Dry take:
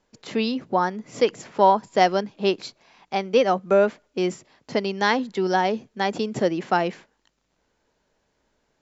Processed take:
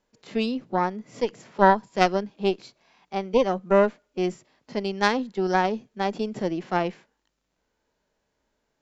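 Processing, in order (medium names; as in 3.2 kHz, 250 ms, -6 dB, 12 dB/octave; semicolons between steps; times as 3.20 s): harmonic-percussive split harmonic +9 dB; Chebyshev shaper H 2 -6 dB, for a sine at 4 dBFS; trim -11 dB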